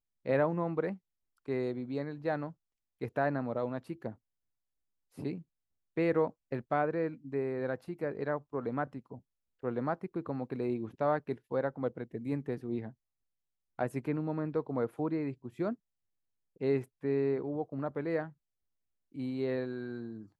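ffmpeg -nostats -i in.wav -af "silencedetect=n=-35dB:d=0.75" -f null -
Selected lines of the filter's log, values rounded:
silence_start: 4.10
silence_end: 5.19 | silence_duration: 1.09
silence_start: 12.88
silence_end: 13.79 | silence_duration: 0.91
silence_start: 15.73
silence_end: 16.61 | silence_duration: 0.88
silence_start: 18.25
silence_end: 19.18 | silence_duration: 0.93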